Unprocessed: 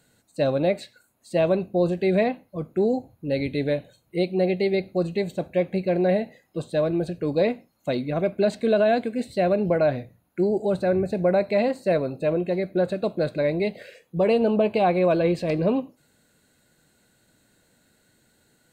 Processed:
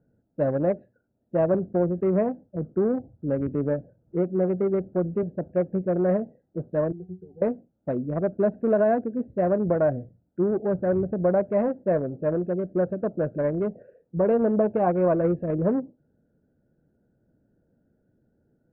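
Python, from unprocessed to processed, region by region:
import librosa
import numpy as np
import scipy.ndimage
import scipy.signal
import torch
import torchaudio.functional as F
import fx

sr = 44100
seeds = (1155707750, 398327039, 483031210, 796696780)

y = fx.chain(x, sr, fx.block_float(bits=5),
    fx.resample_bad(factor=6, down='filtered', up='hold'),
    fx.band_squash(depth_pct=40), at=(1.54, 5.23))
y = fx.chain(y, sr, fx.notch(hz=1500.0, q=7.5),
    fx.octave_resonator(note='F#', decay_s=0.19), at=(6.92, 7.42))
y = fx.wiener(y, sr, points=41)
y = scipy.signal.sosfilt(scipy.signal.butter(4, 1500.0, 'lowpass', fs=sr, output='sos'), y)
y = fx.notch(y, sr, hz=750.0, q=22.0)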